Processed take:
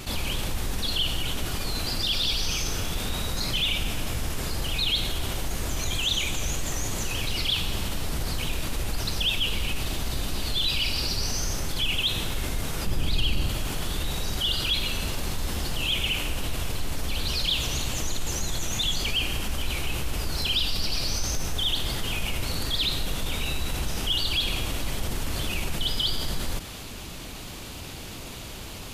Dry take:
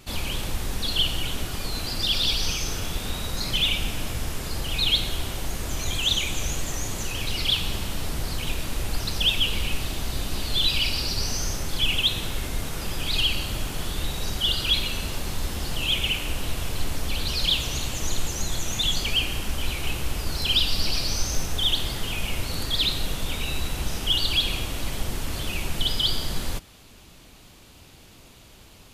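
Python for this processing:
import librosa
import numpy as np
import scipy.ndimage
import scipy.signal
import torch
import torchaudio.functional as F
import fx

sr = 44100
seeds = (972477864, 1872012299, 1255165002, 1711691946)

y = fx.low_shelf(x, sr, hz=440.0, db=10.5, at=(12.86, 13.49))
y = fx.env_flatten(y, sr, amount_pct=50)
y = y * librosa.db_to_amplitude(-7.5)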